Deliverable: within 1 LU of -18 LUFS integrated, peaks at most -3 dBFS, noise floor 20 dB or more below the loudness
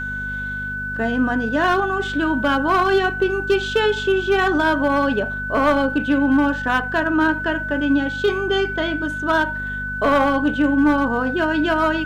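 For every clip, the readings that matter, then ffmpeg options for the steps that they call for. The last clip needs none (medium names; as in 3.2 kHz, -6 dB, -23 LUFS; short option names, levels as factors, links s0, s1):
hum 50 Hz; highest harmonic 250 Hz; hum level -30 dBFS; steady tone 1.5 kHz; tone level -25 dBFS; loudness -19.5 LUFS; peak level -8.0 dBFS; loudness target -18.0 LUFS
-> -af "bandreject=f=50:t=h:w=4,bandreject=f=100:t=h:w=4,bandreject=f=150:t=h:w=4,bandreject=f=200:t=h:w=4,bandreject=f=250:t=h:w=4"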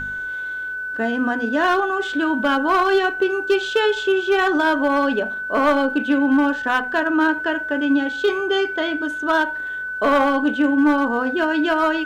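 hum not found; steady tone 1.5 kHz; tone level -25 dBFS
-> -af "bandreject=f=1500:w=30"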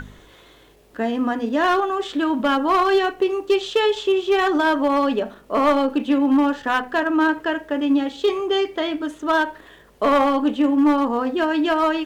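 steady tone not found; loudness -20.0 LUFS; peak level -9.0 dBFS; loudness target -18.0 LUFS
-> -af "volume=1.26"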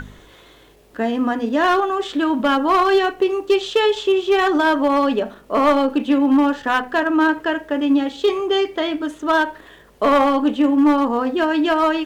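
loudness -18.0 LUFS; peak level -7.0 dBFS; noise floor -48 dBFS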